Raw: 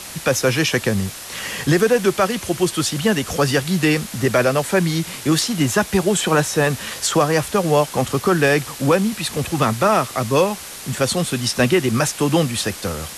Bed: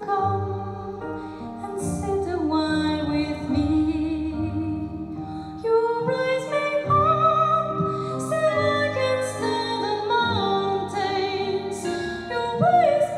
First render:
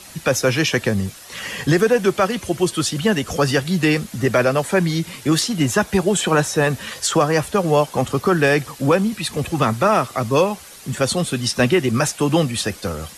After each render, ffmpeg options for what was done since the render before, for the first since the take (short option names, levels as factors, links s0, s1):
-af "afftdn=nr=9:nf=-34"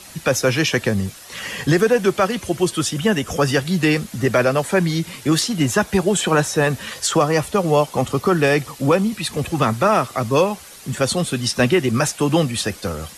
-filter_complex "[0:a]asettb=1/sr,asplit=3[s0][s1][s2];[s0]atrim=end=2.784[s3];[s1]atrim=start=2.78:end=3.54,asetpts=PTS-STARTPTS,afade=t=in:d=0.004:c=qsin,afade=t=out:st=0.756:d=0.004:c=qsin,bandreject=f=4300:w=6.1[s4];[s2]atrim=start=3.536[s5];[s3][s4]acrossfade=d=0.004:c1=hsin:c2=qsin[s6];[s6][s5]acrossfade=d=0.004:c1=qsin:c2=hsin,asettb=1/sr,asplit=3[s7][s8][s9];[s7]atrim=end=7.194[s10];[s8]atrim=start=7.19:end=9.17,asetpts=PTS-STARTPTS,afade=t=in:d=0.004:c=qsin,afade=t=out:st=1.976:d=0.004:c=qsin,bandreject=f=1600:w=10[s11];[s9]atrim=start=9.166[s12];[s10][s11]acrossfade=d=0.004:c1=hsin:c2=qsin[s13];[s13][s12]acrossfade=d=0.004:c1=qsin:c2=hsin"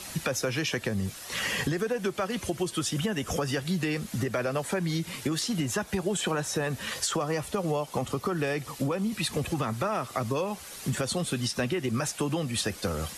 -af "alimiter=limit=0.178:level=0:latency=1:release=453,acompressor=threshold=0.0562:ratio=6"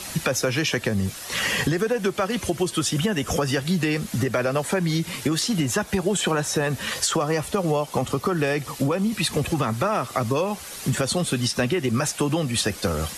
-af "volume=2"